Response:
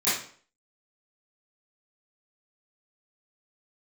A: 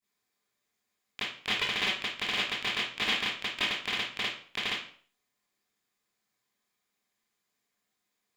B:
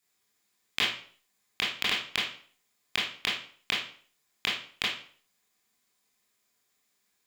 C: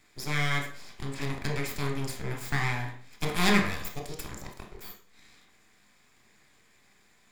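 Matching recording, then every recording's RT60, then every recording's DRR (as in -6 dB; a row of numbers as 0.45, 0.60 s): A; 0.50, 0.50, 0.50 s; -15.5, -7.5, 2.0 dB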